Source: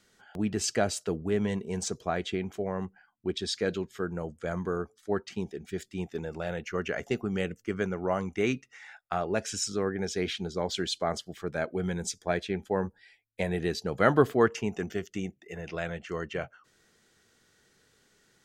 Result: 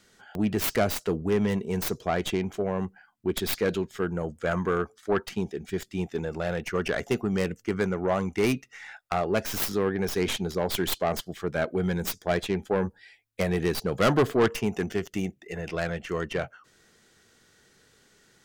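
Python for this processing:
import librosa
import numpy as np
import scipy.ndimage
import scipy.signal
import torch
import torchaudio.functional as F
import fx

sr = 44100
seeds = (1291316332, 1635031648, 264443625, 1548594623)

y = fx.tracing_dist(x, sr, depth_ms=0.27)
y = fx.peak_eq(y, sr, hz=1400.0, db=5.5, octaves=2.0, at=(4.44, 5.26))
y = 10.0 ** (-20.5 / 20.0) * np.tanh(y / 10.0 ** (-20.5 / 20.0))
y = y * librosa.db_to_amplitude(5.0)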